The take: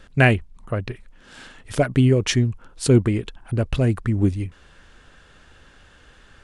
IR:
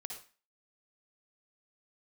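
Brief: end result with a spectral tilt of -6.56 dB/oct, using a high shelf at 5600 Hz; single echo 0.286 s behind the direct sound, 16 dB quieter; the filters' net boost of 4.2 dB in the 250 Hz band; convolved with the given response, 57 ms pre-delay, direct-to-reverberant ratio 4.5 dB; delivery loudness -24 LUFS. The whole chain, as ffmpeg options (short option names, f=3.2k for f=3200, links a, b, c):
-filter_complex "[0:a]equalizer=f=250:t=o:g=5,highshelf=f=5.6k:g=-3,aecho=1:1:286:0.158,asplit=2[a][b];[1:a]atrim=start_sample=2205,adelay=57[c];[b][c]afir=irnorm=-1:irlink=0,volume=-2dB[d];[a][d]amix=inputs=2:normalize=0,volume=-6dB"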